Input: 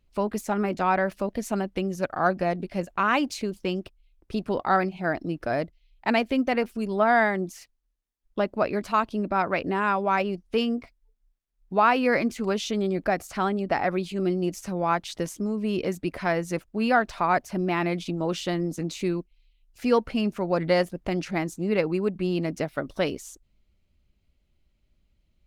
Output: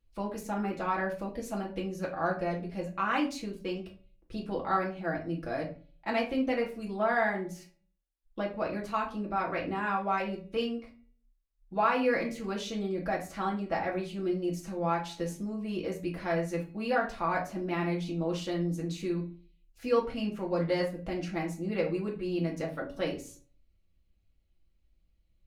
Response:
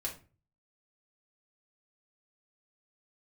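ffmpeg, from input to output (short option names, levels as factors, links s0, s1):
-filter_complex "[0:a]bandreject=f=281.7:t=h:w=4,bandreject=f=563.4:t=h:w=4,bandreject=f=845.1:t=h:w=4,bandreject=f=1126.8:t=h:w=4,bandreject=f=1408.5:t=h:w=4,bandreject=f=1690.2:t=h:w=4,bandreject=f=1971.9:t=h:w=4,bandreject=f=2253.6:t=h:w=4,bandreject=f=2535.3:t=h:w=4,bandreject=f=2817:t=h:w=4,bandreject=f=3098.7:t=h:w=4,bandreject=f=3380.4:t=h:w=4,bandreject=f=3662.1:t=h:w=4,bandreject=f=3943.8:t=h:w=4,bandreject=f=4225.5:t=h:w=4[s0];[1:a]atrim=start_sample=2205[s1];[s0][s1]afir=irnorm=-1:irlink=0,volume=0.422"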